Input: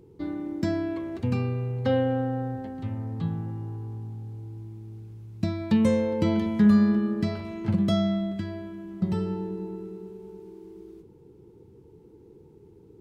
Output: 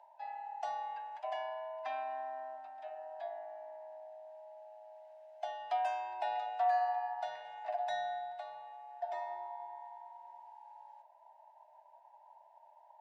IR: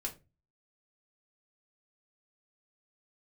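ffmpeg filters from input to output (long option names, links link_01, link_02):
-filter_complex "[0:a]afftfilt=real='real(if(lt(b,1008),b+24*(1-2*mod(floor(b/24),2)),b),0)':imag='imag(if(lt(b,1008),b+24*(1-2*mod(floor(b/24),2)),b),0)':win_size=2048:overlap=0.75,lowpass=5200,acrossover=split=460 2200:gain=0.126 1 0.126[link_01][link_02][link_03];[link_01][link_02][link_03]amix=inputs=3:normalize=0,acrossover=split=350[link_04][link_05];[link_05]acompressor=mode=upward:threshold=-38dB:ratio=2.5[link_06];[link_04][link_06]amix=inputs=2:normalize=0,agate=range=-33dB:threshold=-42dB:ratio=3:detection=peak,aderivative,volume=8dB"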